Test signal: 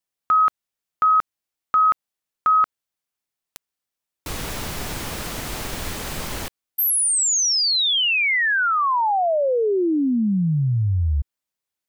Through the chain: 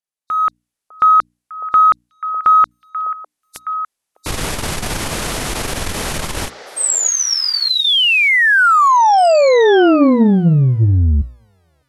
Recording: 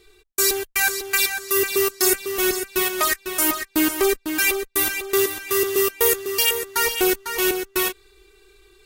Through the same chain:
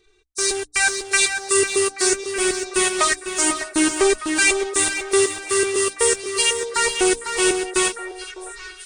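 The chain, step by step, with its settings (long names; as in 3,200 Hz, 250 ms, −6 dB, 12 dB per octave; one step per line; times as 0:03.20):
hearing-aid frequency compression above 3,600 Hz 1.5 to 1
automatic gain control gain up to 15.5 dB
in parallel at −10.5 dB: dead-zone distortion −28 dBFS
on the sum: mains-hum notches 60/120/180/240/300 Hz
on a send: echo through a band-pass that steps 603 ms, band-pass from 600 Hz, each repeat 1.4 octaves, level −8 dB
on the sum: saturating transformer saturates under 150 Hz
level −6.5 dB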